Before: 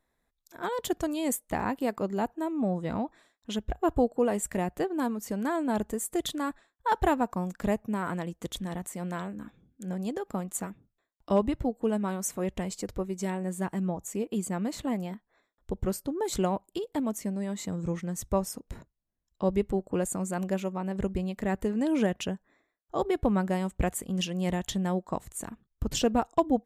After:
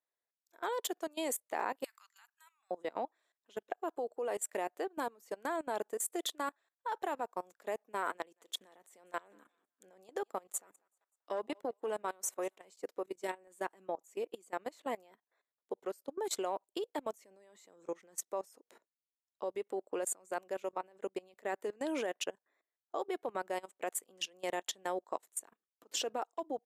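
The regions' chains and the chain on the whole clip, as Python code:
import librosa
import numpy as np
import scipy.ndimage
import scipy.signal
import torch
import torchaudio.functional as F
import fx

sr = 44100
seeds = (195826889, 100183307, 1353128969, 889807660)

y = fx.chain(x, sr, fx.cheby2_bandstop(low_hz=100.0, high_hz=560.0, order=4, stop_db=50),
    fx.high_shelf(hz=3300.0, db=8.0), at=(1.84, 2.71))
y = fx.chain(y, sr, fx.echo_thinned(ms=193, feedback_pct=46, hz=590.0, wet_db=-23.0),
    fx.transformer_sat(knee_hz=410.0), at=(8.16, 12.65))
y = scipy.signal.sosfilt(scipy.signal.butter(4, 380.0, 'highpass', fs=sr, output='sos'), y)
y = fx.level_steps(y, sr, step_db=18)
y = fx.upward_expand(y, sr, threshold_db=-53.0, expansion=1.5)
y = y * 10.0 ** (2.0 / 20.0)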